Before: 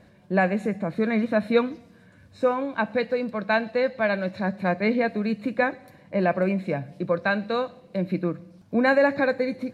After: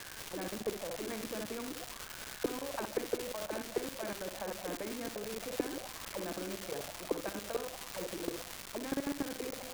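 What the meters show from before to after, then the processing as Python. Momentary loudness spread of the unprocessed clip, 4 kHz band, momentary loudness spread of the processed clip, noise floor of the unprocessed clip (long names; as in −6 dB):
8 LU, −3.0 dB, 5 LU, −54 dBFS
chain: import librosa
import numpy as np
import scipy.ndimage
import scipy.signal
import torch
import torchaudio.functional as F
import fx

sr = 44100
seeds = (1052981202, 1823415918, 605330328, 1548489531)

p1 = fx.auto_wah(x, sr, base_hz=290.0, top_hz=1600.0, q=12.0, full_db=-19.0, direction='down')
p2 = p1 + fx.room_early_taps(p1, sr, ms=(49, 63), db=(-13.5, -8.0), dry=0)
p3 = fx.level_steps(p2, sr, step_db=15)
p4 = fx.low_shelf(p3, sr, hz=220.0, db=-8.5)
p5 = fx.dmg_crackle(p4, sr, seeds[0], per_s=540.0, level_db=-52.0)
p6 = fx.low_shelf(p5, sr, hz=73.0, db=8.5)
p7 = fx.spectral_comp(p6, sr, ratio=2.0)
y = p7 * 10.0 ** (4.0 / 20.0)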